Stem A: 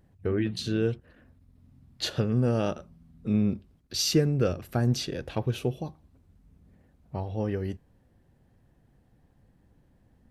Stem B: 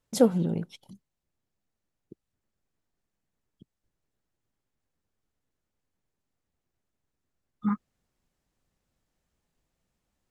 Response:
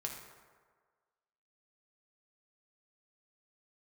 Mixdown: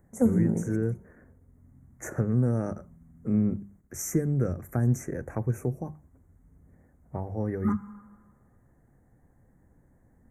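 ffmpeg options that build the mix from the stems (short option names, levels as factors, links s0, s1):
-filter_complex "[0:a]volume=1.19,asplit=2[s0][s1];[1:a]volume=1.26,asplit=2[s2][s3];[s3]volume=0.355[s4];[s1]apad=whole_len=454578[s5];[s2][s5]sidechaingate=range=0.0224:threshold=0.00251:ratio=16:detection=peak[s6];[2:a]atrim=start_sample=2205[s7];[s4][s7]afir=irnorm=-1:irlink=0[s8];[s0][s6][s8]amix=inputs=3:normalize=0,bandreject=f=50:t=h:w=6,bandreject=f=100:t=h:w=6,bandreject=f=150:t=h:w=6,bandreject=f=200:t=h:w=6,acrossover=split=280|3000[s9][s10][s11];[s10]acompressor=threshold=0.02:ratio=3[s12];[s9][s12][s11]amix=inputs=3:normalize=0,asuperstop=centerf=3700:order=12:qfactor=0.89"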